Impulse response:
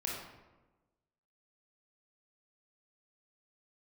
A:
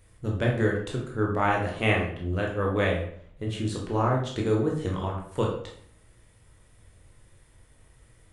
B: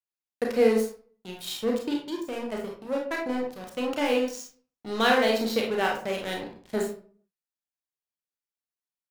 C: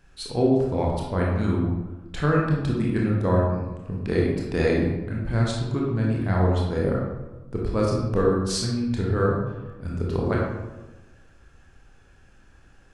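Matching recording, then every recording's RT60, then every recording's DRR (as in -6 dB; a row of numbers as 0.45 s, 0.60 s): C; 0.60 s, 0.45 s, 1.2 s; -1.5 dB, -1.0 dB, -3.5 dB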